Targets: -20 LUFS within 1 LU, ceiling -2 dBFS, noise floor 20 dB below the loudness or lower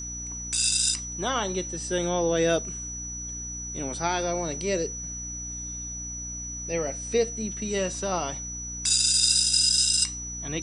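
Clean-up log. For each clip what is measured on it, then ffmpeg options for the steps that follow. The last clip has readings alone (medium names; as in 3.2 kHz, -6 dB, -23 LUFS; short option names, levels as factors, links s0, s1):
hum 60 Hz; highest harmonic 300 Hz; hum level -38 dBFS; steady tone 5.9 kHz; tone level -34 dBFS; loudness -25.5 LUFS; peak level -8.0 dBFS; loudness target -20.0 LUFS
-> -af "bandreject=f=60:t=h:w=6,bandreject=f=120:t=h:w=6,bandreject=f=180:t=h:w=6,bandreject=f=240:t=h:w=6,bandreject=f=300:t=h:w=6"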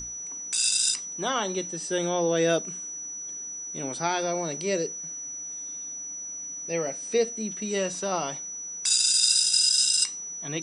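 hum not found; steady tone 5.9 kHz; tone level -34 dBFS
-> -af "bandreject=f=5900:w=30"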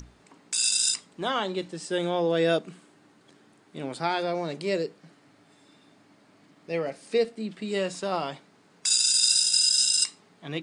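steady tone not found; loudness -24.5 LUFS; peak level -8.5 dBFS; loudness target -20.0 LUFS
-> -af "volume=1.68"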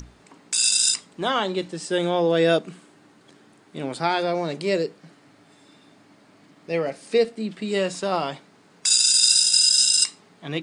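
loudness -20.0 LUFS; peak level -4.0 dBFS; noise floor -55 dBFS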